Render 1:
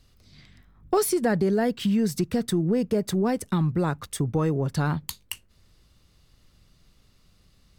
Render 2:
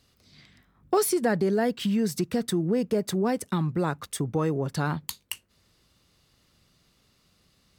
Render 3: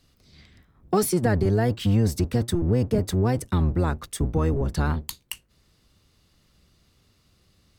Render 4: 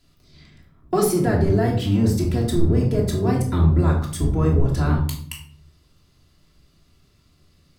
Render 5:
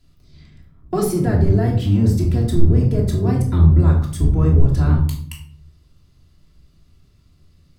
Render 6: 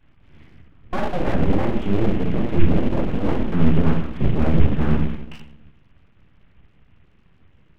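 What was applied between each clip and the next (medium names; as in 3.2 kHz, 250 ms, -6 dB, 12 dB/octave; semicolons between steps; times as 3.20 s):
high-pass 180 Hz 6 dB/octave
octave divider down 1 oct, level +4 dB
simulated room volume 790 m³, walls furnished, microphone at 3 m; trim -2 dB
bass shelf 190 Hz +10.5 dB; trim -3 dB
CVSD coder 16 kbps; full-wave rectifier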